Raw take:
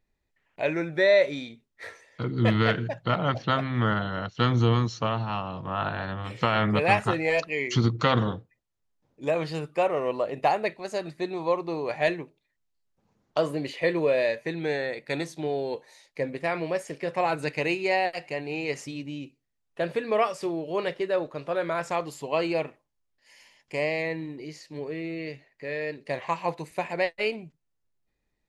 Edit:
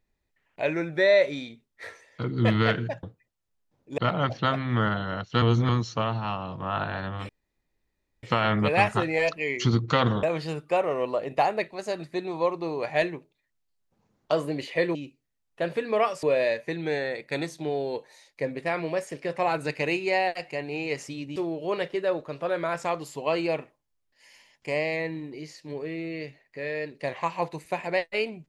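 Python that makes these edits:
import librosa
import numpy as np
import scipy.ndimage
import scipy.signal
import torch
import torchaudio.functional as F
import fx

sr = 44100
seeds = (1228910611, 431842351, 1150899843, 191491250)

y = fx.edit(x, sr, fx.reverse_span(start_s=4.47, length_s=0.27),
    fx.insert_room_tone(at_s=6.34, length_s=0.94),
    fx.move(start_s=8.34, length_s=0.95, to_s=3.03),
    fx.move(start_s=19.14, length_s=1.28, to_s=14.01), tone=tone)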